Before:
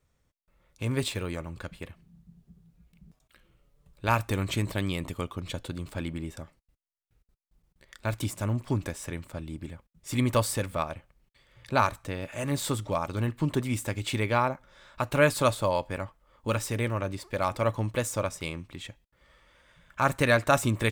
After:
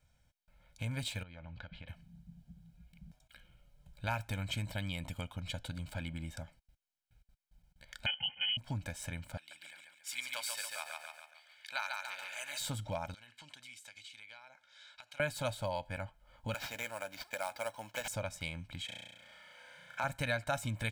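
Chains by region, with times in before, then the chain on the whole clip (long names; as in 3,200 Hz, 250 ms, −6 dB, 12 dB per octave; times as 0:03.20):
0:01.23–0:01.88: low-pass filter 4,300 Hz 24 dB per octave + downward compressor 8 to 1, threshold −44 dBFS
0:08.06–0:08.57: comb filter 3.1 ms, depth 93% + voice inversion scrambler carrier 3,100 Hz
0:09.37–0:12.60: high-pass filter 1,400 Hz + repeating echo 140 ms, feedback 42%, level −4 dB
0:13.14–0:15.20: resonant band-pass 4,400 Hz, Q 0.81 + downward compressor 12 to 1, threshold −50 dBFS
0:16.54–0:18.08: Bessel high-pass filter 540 Hz + sample-rate reduction 9,500 Hz
0:18.85–0:20.04: high-pass filter 250 Hz + flutter between parallel walls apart 5.8 metres, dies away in 1 s
whole clip: parametric band 3,000 Hz +4.5 dB 1.5 octaves; comb filter 1.3 ms, depth 87%; downward compressor 2 to 1, threshold −38 dBFS; level −3.5 dB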